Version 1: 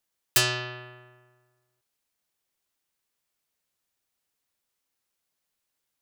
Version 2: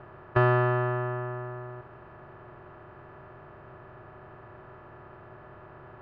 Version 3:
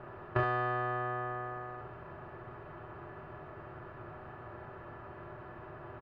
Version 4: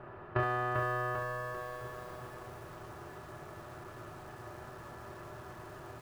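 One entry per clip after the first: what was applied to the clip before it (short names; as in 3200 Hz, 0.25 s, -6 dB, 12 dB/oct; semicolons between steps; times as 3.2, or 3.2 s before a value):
per-bin compression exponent 0.4; LPF 1300 Hz 24 dB/oct; gain +8 dB
compressor 2.5:1, threshold -29 dBFS, peak gain reduction 8 dB; early reflections 26 ms -5 dB, 38 ms -7 dB, 69 ms -6 dB; gain -1.5 dB
lo-fi delay 0.395 s, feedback 55%, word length 9-bit, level -4 dB; gain -1 dB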